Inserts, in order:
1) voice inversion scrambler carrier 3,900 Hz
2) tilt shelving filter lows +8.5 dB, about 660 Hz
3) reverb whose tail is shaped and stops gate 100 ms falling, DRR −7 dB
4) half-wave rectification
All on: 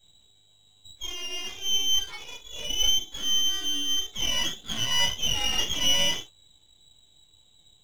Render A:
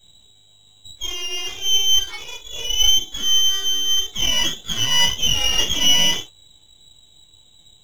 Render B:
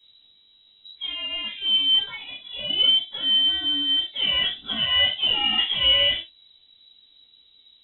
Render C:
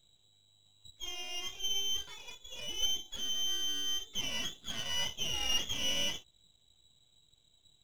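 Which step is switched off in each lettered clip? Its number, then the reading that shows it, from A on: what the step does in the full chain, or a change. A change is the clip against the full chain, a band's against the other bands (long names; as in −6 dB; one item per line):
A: 2, 500 Hz band −2.5 dB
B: 4, change in crest factor −3.0 dB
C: 3, change in momentary loudness spread −2 LU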